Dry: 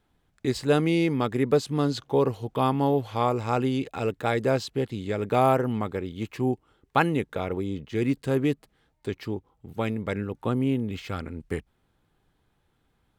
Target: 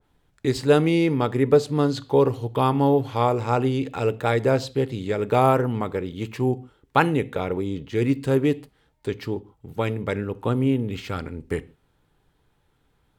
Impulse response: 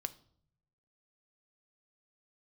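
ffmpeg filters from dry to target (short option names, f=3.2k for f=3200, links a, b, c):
-filter_complex "[0:a]asplit=2[a][b];[1:a]atrim=start_sample=2205,atrim=end_sample=6174,asetrate=37926,aresample=44100[c];[b][c]afir=irnorm=-1:irlink=0,volume=2.5dB[d];[a][d]amix=inputs=2:normalize=0,adynamicequalizer=threshold=0.0316:dfrequency=1900:dqfactor=0.7:tfrequency=1900:tqfactor=0.7:attack=5:release=100:ratio=0.375:range=2:mode=cutabove:tftype=highshelf,volume=-3.5dB"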